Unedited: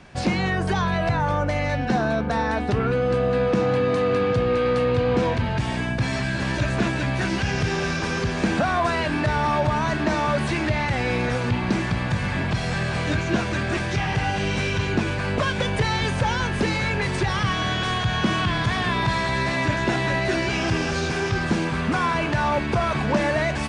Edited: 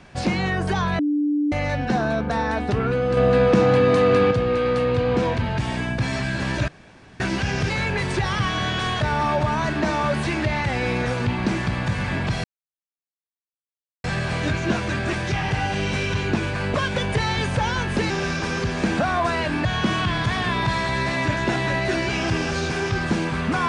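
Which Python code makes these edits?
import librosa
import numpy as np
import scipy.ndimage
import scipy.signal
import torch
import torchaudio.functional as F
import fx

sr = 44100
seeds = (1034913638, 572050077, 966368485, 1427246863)

y = fx.edit(x, sr, fx.bleep(start_s=0.99, length_s=0.53, hz=294.0, db=-18.0),
    fx.clip_gain(start_s=3.17, length_s=1.14, db=4.5),
    fx.room_tone_fill(start_s=6.68, length_s=0.52),
    fx.swap(start_s=7.7, length_s=1.55, other_s=16.74, other_length_s=1.31),
    fx.insert_silence(at_s=12.68, length_s=1.6), tone=tone)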